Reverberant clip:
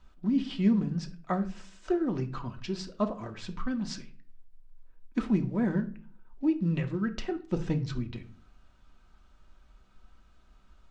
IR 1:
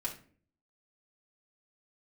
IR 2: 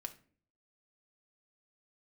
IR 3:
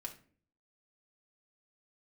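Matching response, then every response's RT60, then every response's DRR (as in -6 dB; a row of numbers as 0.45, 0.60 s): 2; 0.45, 0.45, 0.45 s; -4.0, 4.5, 0.0 dB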